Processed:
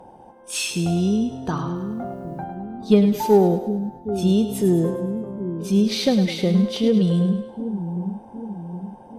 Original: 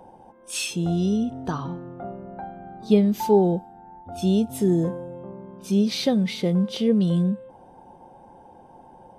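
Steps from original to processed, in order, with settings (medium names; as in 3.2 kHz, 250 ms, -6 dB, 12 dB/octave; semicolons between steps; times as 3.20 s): 1.75–2.44 s: word length cut 12-bit, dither triangular; Chebyshev shaper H 6 -34 dB, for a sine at -5 dBFS; two-band feedback delay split 400 Hz, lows 765 ms, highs 104 ms, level -9 dB; trim +2.5 dB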